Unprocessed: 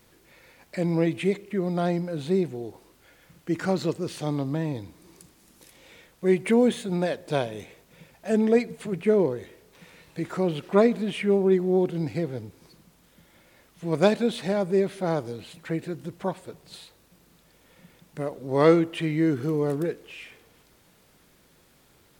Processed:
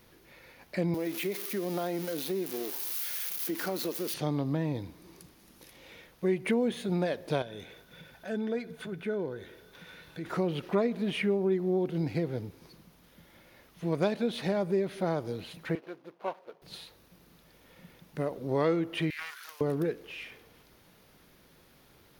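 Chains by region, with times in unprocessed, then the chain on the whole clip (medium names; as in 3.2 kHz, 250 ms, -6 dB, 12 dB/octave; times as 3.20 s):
0.94–4.14 s: zero-crossing glitches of -23.5 dBFS + high-pass 220 Hz 24 dB/octave + compression 5:1, threshold -28 dBFS
7.42–10.26 s: compression 1.5:1, threshold -49 dBFS + small resonant body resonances 1.5/3.5 kHz, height 15 dB, ringing for 35 ms
15.75–16.62 s: median filter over 25 samples + high-pass 600 Hz + treble shelf 5.4 kHz -8.5 dB
19.10–19.61 s: high-pass 1.3 kHz 24 dB/octave + treble shelf 5.4 kHz +11 dB + loudspeaker Doppler distortion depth 0.35 ms
whole clip: peaking EQ 7.8 kHz -11.5 dB 0.36 oct; compression 3:1, threshold -26 dBFS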